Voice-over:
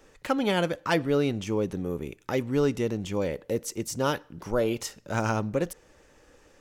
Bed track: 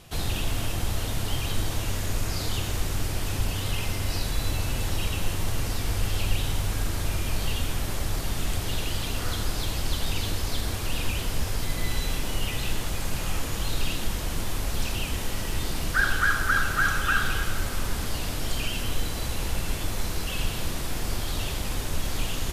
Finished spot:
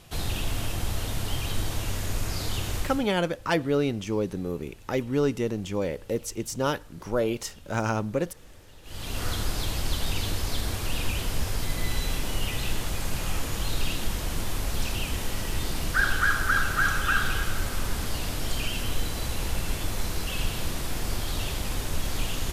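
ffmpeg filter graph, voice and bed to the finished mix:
-filter_complex "[0:a]adelay=2600,volume=1[s0];[1:a]volume=11.9,afade=t=out:st=2.77:d=0.31:silence=0.0794328,afade=t=in:st=8.83:d=0.4:silence=0.0707946[s1];[s0][s1]amix=inputs=2:normalize=0"

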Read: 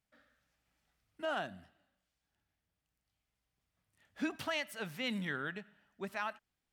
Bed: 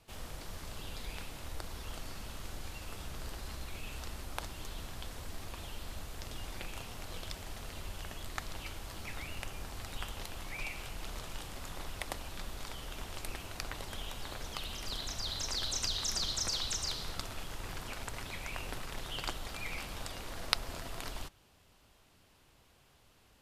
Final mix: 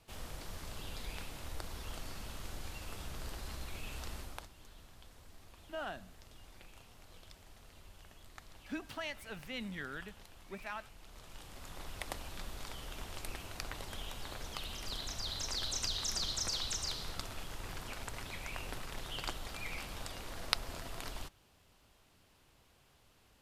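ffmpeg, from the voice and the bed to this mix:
-filter_complex "[0:a]adelay=4500,volume=0.562[s0];[1:a]volume=3.35,afade=t=out:st=4.17:d=0.32:silence=0.237137,afade=t=in:st=11.08:d=1.03:silence=0.266073[s1];[s0][s1]amix=inputs=2:normalize=0"

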